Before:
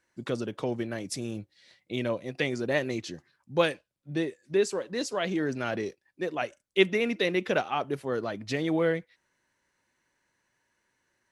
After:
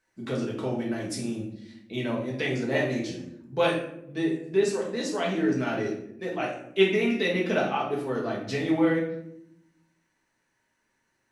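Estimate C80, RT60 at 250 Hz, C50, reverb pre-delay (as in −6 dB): 8.5 dB, 1.3 s, 5.0 dB, 4 ms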